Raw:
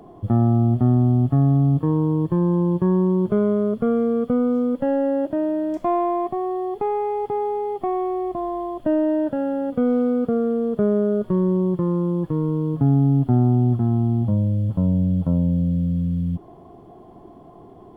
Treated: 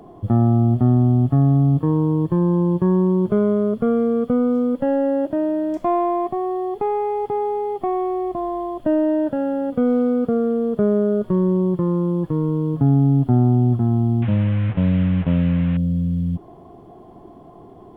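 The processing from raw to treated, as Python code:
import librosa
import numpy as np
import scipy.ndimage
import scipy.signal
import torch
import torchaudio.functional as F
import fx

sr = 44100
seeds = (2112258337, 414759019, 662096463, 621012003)

y = fx.delta_mod(x, sr, bps=16000, step_db=-29.5, at=(14.22, 15.77))
y = F.gain(torch.from_numpy(y), 1.5).numpy()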